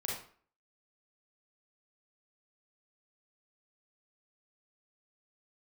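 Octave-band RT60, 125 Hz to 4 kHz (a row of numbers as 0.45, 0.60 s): 0.40, 0.50, 0.45, 0.50, 0.45, 0.35 s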